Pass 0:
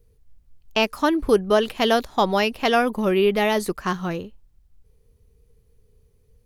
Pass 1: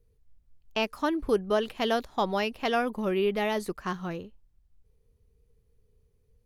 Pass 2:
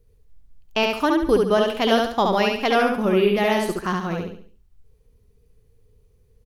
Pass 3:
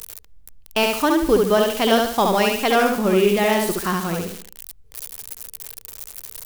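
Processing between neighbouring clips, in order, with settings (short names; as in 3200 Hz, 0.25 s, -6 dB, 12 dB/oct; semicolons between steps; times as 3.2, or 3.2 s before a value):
high shelf 5100 Hz -4 dB; gain -7.5 dB
feedback echo 70 ms, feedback 38%, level -3 dB; gain +6.5 dB
switching spikes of -21.5 dBFS; gain +1.5 dB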